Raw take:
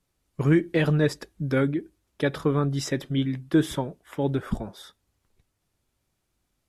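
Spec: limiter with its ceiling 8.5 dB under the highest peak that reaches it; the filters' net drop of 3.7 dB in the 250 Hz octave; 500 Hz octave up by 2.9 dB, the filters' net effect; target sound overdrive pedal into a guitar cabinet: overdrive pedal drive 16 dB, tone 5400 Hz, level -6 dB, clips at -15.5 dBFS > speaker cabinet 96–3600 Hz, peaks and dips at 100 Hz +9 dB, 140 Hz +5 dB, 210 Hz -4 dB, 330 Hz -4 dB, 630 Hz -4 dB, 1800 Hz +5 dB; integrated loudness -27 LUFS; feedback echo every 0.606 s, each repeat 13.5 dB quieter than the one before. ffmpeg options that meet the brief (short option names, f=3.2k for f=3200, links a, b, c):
-filter_complex "[0:a]equalizer=f=250:t=o:g=-7,equalizer=f=500:t=o:g=7.5,alimiter=limit=-17dB:level=0:latency=1,aecho=1:1:606|1212:0.211|0.0444,asplit=2[a][b];[b]highpass=f=720:p=1,volume=16dB,asoftclip=type=tanh:threshold=-15.5dB[c];[a][c]amix=inputs=2:normalize=0,lowpass=f=5.4k:p=1,volume=-6dB,highpass=96,equalizer=f=100:t=q:w=4:g=9,equalizer=f=140:t=q:w=4:g=5,equalizer=f=210:t=q:w=4:g=-4,equalizer=f=330:t=q:w=4:g=-4,equalizer=f=630:t=q:w=4:g=-4,equalizer=f=1.8k:t=q:w=4:g=5,lowpass=f=3.6k:w=0.5412,lowpass=f=3.6k:w=1.3066"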